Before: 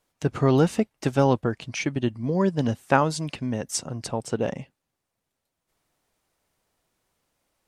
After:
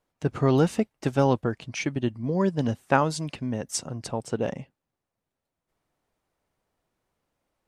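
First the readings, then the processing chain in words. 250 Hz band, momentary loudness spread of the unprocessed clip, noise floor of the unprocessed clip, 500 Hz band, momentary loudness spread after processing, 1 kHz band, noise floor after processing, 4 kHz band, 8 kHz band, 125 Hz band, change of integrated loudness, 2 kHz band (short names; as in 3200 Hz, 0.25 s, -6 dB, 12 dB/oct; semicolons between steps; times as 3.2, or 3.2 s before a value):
-1.5 dB, 9 LU, -83 dBFS, -1.5 dB, 9 LU, -1.5 dB, under -85 dBFS, -2.0 dB, -2.0 dB, -1.5 dB, -1.5 dB, -1.5 dB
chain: mismatched tape noise reduction decoder only; gain -1.5 dB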